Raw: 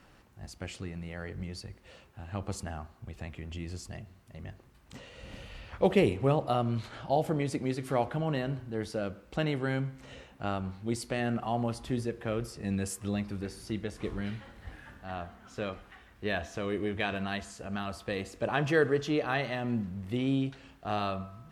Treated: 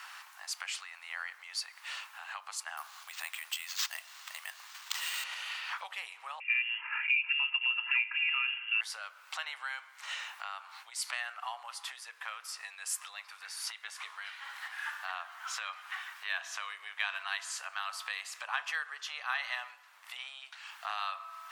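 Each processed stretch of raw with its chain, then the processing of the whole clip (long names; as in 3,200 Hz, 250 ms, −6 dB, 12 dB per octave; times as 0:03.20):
0:02.77–0:05.24: high-shelf EQ 3,900 Hz +11 dB + bad sample-rate conversion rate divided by 4×, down none, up hold
0:06.40–0:08.81: four-pole ladder high-pass 240 Hz, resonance 20% + comb filter 2.8 ms, depth 84% + voice inversion scrambler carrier 3,100 Hz
0:10.33–0:11.13: downward compressor 3 to 1, threshold −47 dBFS + high-pass filter 230 Hz
whole clip: downward compressor 4 to 1, threshold −46 dBFS; Butterworth high-pass 950 Hz 36 dB per octave; level +16 dB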